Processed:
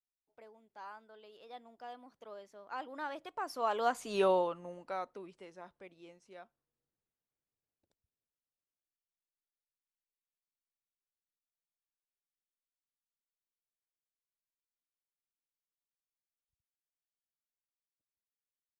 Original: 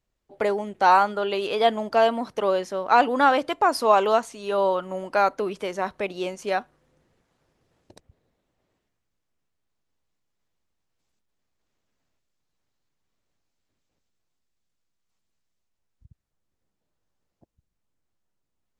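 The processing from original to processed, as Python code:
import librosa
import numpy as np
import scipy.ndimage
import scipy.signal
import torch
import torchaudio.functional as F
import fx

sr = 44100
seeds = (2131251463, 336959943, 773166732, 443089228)

y = fx.doppler_pass(x, sr, speed_mps=23, closest_m=2.1, pass_at_s=4.15)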